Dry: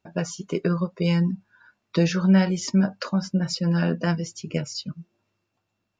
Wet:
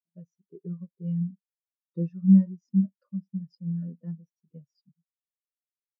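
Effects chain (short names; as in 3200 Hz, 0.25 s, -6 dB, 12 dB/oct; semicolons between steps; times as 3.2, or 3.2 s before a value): notch comb 780 Hz; spectral expander 2.5:1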